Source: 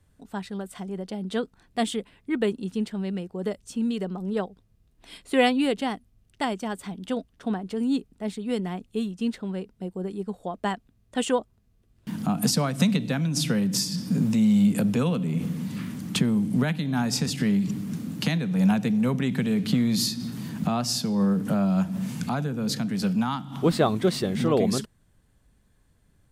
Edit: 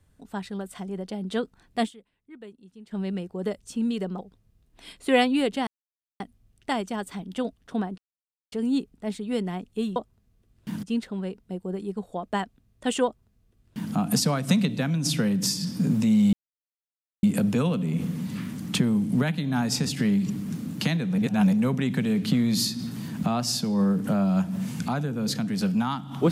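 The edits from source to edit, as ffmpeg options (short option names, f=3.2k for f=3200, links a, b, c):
-filter_complex "[0:a]asplit=11[a][b][c][d][e][f][g][h][i][j][k];[a]atrim=end=2.07,asetpts=PTS-STARTPTS,afade=t=out:st=1.85:d=0.22:c=exp:silence=0.105925[l];[b]atrim=start=2.07:end=2.71,asetpts=PTS-STARTPTS,volume=-19.5dB[m];[c]atrim=start=2.71:end=4.192,asetpts=PTS-STARTPTS,afade=t=in:d=0.22:c=exp:silence=0.105925[n];[d]atrim=start=4.438:end=5.92,asetpts=PTS-STARTPTS,afade=t=out:st=1.478:d=0.004:c=hsin,apad=pad_dur=0.53[o];[e]atrim=start=5.92:end=7.7,asetpts=PTS-STARTPTS,afade=t=in:d=0.004:c=hsin,afade=t=out:st=1.776:d=0.004:c=hsin,apad=pad_dur=0.54[p];[f]atrim=start=7.7:end=9.142,asetpts=PTS-STARTPTS,afade=t=in:d=0.004:c=hsin[q];[g]atrim=start=11.358:end=12.232[r];[h]atrim=start=9.138:end=14.64,asetpts=PTS-STARTPTS,afade=t=out:st=5.498:d=0.004:c=hsin,apad=pad_dur=0.9[s];[i]atrim=start=14.64:end=18.592,asetpts=PTS-STARTPTS,afade=t=in:d=0.004:c=hsin[t];[j]atrim=start=18.588:end=18.942,asetpts=PTS-STARTPTS,areverse[u];[k]atrim=start=18.938[v];[l][m][n]concat=n=3:v=0:a=1[w];[o][p][q]concat=n=3:v=0:a=1[x];[w][x]acrossfade=d=0.004:c1=hsin:c2=hsin[y];[y][r]acrossfade=d=0.004:c1=hsin:c2=hsin[z];[s][t]concat=n=2:v=0:a=1[aa];[z][aa]acrossfade=d=0.004:c1=hsin:c2=hsin[ab];[ab][u]acrossfade=d=0.004:c1=hsin:c2=hsin[ac];[ac][v]acrossfade=d=0.004:c1=hsin:c2=hsin"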